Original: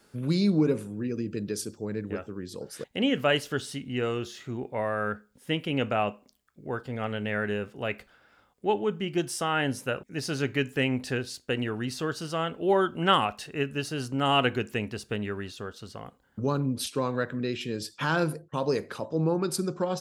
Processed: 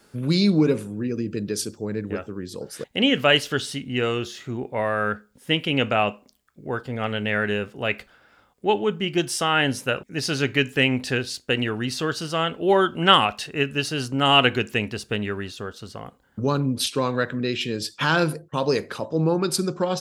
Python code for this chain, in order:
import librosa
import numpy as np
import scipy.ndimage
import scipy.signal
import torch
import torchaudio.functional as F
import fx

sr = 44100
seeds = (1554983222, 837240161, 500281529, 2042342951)

y = fx.dynamic_eq(x, sr, hz=3400.0, q=0.72, threshold_db=-43.0, ratio=4.0, max_db=6)
y = y * librosa.db_to_amplitude(4.5)